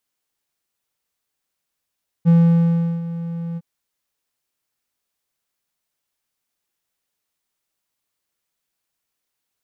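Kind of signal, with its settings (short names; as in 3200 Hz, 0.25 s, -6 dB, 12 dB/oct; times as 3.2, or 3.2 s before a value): ADSR triangle 168 Hz, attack 33 ms, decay 0.73 s, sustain -15.5 dB, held 1.32 s, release 39 ms -6.5 dBFS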